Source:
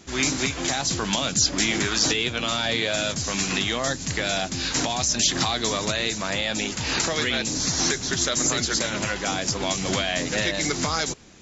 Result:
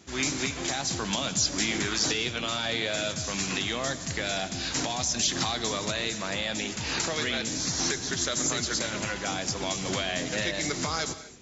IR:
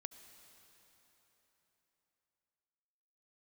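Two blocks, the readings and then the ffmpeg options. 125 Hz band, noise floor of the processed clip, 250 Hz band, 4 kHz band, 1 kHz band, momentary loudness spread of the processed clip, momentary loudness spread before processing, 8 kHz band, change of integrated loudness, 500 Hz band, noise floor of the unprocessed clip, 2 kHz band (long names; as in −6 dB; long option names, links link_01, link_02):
−5.0 dB, −38 dBFS, −5.0 dB, −5.0 dB, −5.0 dB, 5 LU, 5 LU, can't be measured, −5.0 dB, −4.5 dB, −34 dBFS, −5.0 dB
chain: -filter_complex "[0:a]highpass=44[link_01];[1:a]atrim=start_sample=2205,afade=type=out:start_time=0.32:duration=0.01,atrim=end_sample=14553[link_02];[link_01][link_02]afir=irnorm=-1:irlink=0"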